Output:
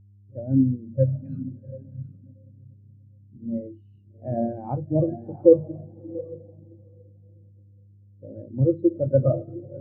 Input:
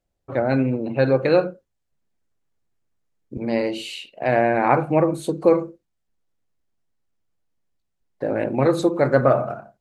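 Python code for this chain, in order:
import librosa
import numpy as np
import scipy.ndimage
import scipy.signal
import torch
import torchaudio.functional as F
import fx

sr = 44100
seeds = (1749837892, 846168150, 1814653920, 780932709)

p1 = fx.brickwall_bandstop(x, sr, low_hz=250.0, high_hz=1200.0, at=(1.04, 1.46), fade=0.02)
p2 = p1 + fx.echo_diffused(p1, sr, ms=736, feedback_pct=48, wet_db=-4.5, dry=0)
p3 = fx.dmg_buzz(p2, sr, base_hz=100.0, harmonics=4, level_db=-34.0, tilt_db=-5, odd_only=False)
p4 = np.sign(p3) * np.maximum(np.abs(p3) - 10.0 ** (-32.5 / 20.0), 0.0)
p5 = p3 + F.gain(torch.from_numpy(p4), -10.0).numpy()
p6 = fx.low_shelf(p5, sr, hz=330.0, db=10.5)
p7 = fx.spectral_expand(p6, sr, expansion=2.5)
y = F.gain(torch.from_numpy(p7), -7.0).numpy()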